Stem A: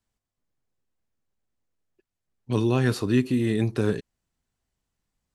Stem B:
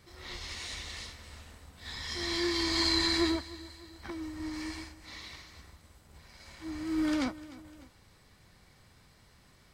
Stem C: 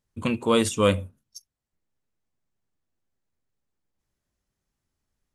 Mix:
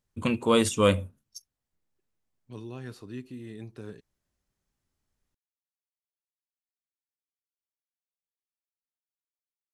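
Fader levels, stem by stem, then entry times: -18.0 dB, mute, -1.0 dB; 0.00 s, mute, 0.00 s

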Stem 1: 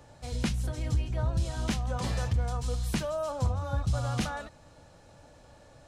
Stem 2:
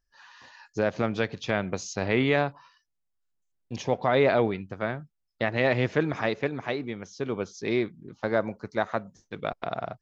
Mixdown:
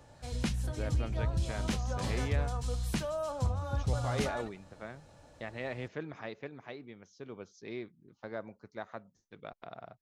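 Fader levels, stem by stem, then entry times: -3.0 dB, -15.0 dB; 0.00 s, 0.00 s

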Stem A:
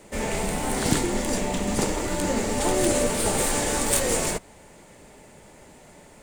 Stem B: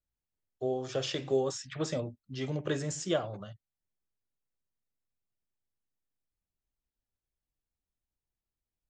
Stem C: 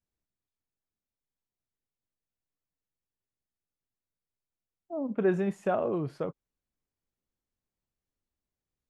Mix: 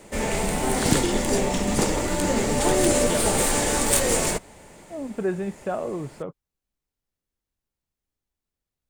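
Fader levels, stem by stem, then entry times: +2.0 dB, +0.5 dB, 0.0 dB; 0.00 s, 0.00 s, 0.00 s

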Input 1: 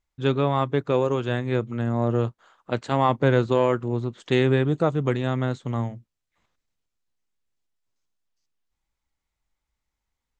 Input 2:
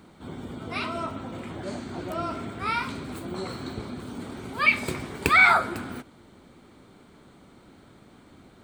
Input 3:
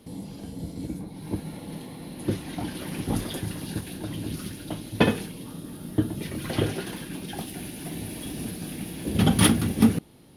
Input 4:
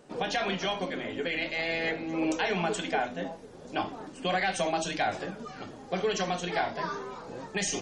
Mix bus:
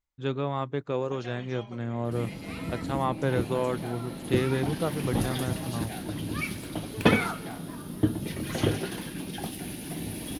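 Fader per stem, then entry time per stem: -7.5 dB, -14.0 dB, -0.5 dB, -15.5 dB; 0.00 s, 1.75 s, 2.05 s, 0.90 s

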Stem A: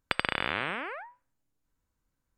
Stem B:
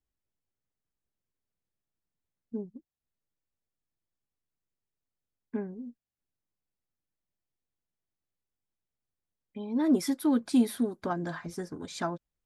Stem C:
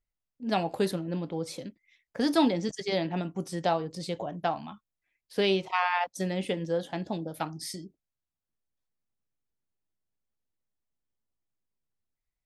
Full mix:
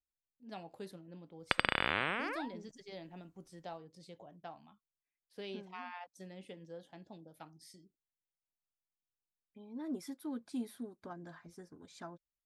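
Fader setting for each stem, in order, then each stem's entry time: -2.0 dB, -15.5 dB, -19.5 dB; 1.40 s, 0.00 s, 0.00 s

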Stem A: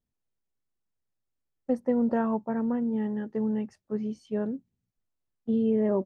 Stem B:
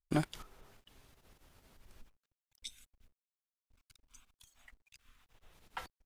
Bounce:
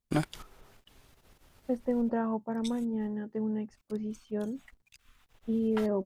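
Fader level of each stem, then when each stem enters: -4.0 dB, +3.0 dB; 0.00 s, 0.00 s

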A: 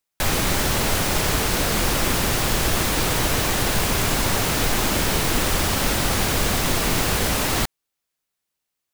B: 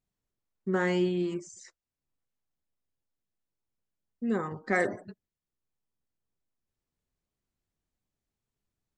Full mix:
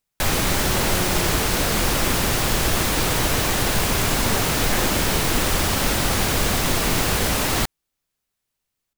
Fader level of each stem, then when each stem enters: +0.5 dB, -4.0 dB; 0.00 s, 0.00 s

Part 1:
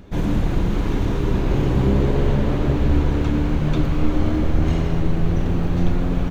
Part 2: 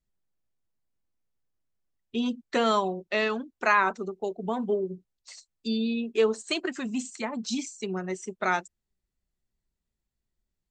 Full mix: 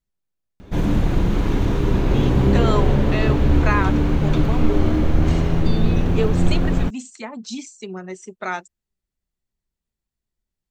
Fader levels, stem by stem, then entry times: +1.5 dB, -0.5 dB; 0.60 s, 0.00 s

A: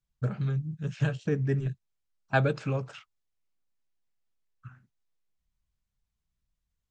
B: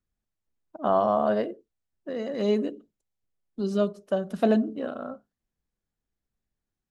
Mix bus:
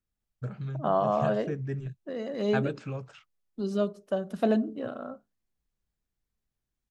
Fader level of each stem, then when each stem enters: -6.0 dB, -3.0 dB; 0.20 s, 0.00 s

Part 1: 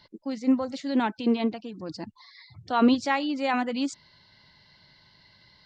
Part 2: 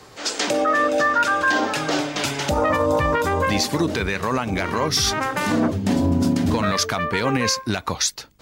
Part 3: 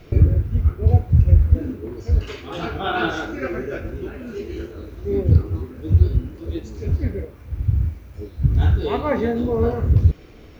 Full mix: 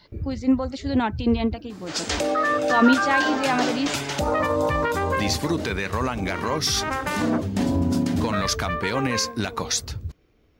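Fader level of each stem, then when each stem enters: +2.5 dB, -3.0 dB, -18.0 dB; 0.00 s, 1.70 s, 0.00 s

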